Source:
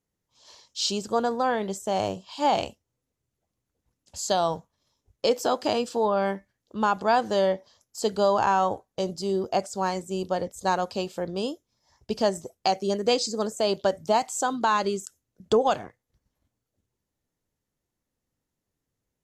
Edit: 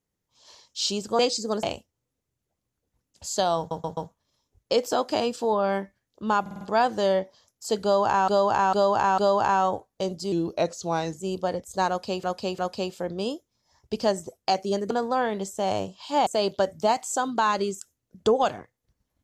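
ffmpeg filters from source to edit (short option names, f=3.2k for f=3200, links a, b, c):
-filter_complex "[0:a]asplit=19[a][b][c][d][e][f][g][h][i][j][k][l][m][n][o][p][q][r][s];[a]atrim=end=1.192[t];[b]atrim=start=13.078:end=13.522[u];[c]atrim=start=2.548:end=4.632[v];[d]atrim=start=4.498:end=4.632[w];[e]atrim=start=4.498:end=4.632[x];[f]atrim=start=4.498:end=6.992[y];[g]atrim=start=6.938:end=6.992[z];[h]atrim=start=6.938:end=6.992[aa];[i]atrim=start=6.938:end=6.992[ab];[j]atrim=start=6.938:end=8.612[ac];[k]atrim=start=8.158:end=8.612[ad];[l]atrim=start=8.158:end=8.612[ae];[m]atrim=start=8.158:end=9.304[af];[n]atrim=start=9.3:end=10.07,asetpts=PTS-STARTPTS,asetrate=38808,aresample=44100[ag];[o]atrim=start=10.066:end=11.112[ah];[p]atrim=start=10.758:end=11.112[ai];[q]atrim=start=10.758:end=13.082[aj];[r]atrim=start=1.188:end=2.552[ak];[s]atrim=start=13.518[al];[t][u]acrossfade=d=0.004:c1=hsin:c2=hsin[am];[am][v]acrossfade=d=0.004:c1=hsin:c2=hsin[an];[an][w]acrossfade=d=0.004:c1=hsin:c2=hsin[ao];[ao][x]acrossfade=d=0.004:c1=hsin:c2=hsin[ap];[ap][y]acrossfade=d=0.004:c1=hsin:c2=hsin[aq];[aq][z]acrossfade=d=0.004:c1=hsin:c2=hsin[ar];[ar][aa]acrossfade=d=0.004:c1=hsin:c2=hsin[as];[as][ab]acrossfade=d=0.004:c1=hsin:c2=hsin[at];[at][ac]acrossfade=d=0.004:c1=hsin:c2=hsin[au];[au][ad]acrossfade=d=0.004:c1=hsin:c2=hsin[av];[av][ae]acrossfade=d=0.004:c1=hsin:c2=hsin[aw];[aw][af]acrossfade=d=0.004:c1=hsin:c2=hsin[ax];[ax][ag]acrossfade=d=0.004:c1=hsin:c2=hsin[ay];[ay][ah]acrossfade=d=0.004:c1=hsin:c2=hsin[az];[az][ai]acrossfade=d=0.004:c1=hsin:c2=hsin[ba];[ba][aj]acrossfade=d=0.004:c1=hsin:c2=hsin[bb];[bb][ak]acrossfade=d=0.004:c1=hsin:c2=hsin[bc];[bc][al]acrossfade=d=0.004:c1=hsin:c2=hsin"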